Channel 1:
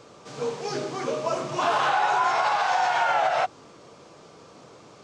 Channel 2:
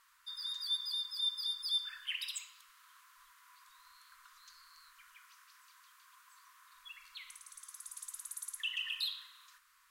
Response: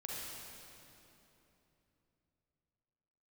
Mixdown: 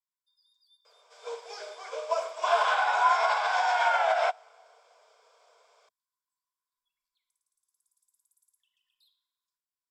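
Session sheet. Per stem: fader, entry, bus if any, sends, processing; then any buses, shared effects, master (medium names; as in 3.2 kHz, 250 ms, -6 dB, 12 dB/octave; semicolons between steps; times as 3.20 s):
-1.5 dB, 0.85 s, send -18.5 dB, steep high-pass 490 Hz 48 dB/octave
-17.0 dB, 0.00 s, no send, high-order bell 1.9 kHz -12.5 dB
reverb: on, RT60 3.2 s, pre-delay 36 ms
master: rippled EQ curve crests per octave 1.7, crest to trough 7 dB; upward expansion 1.5:1, over -41 dBFS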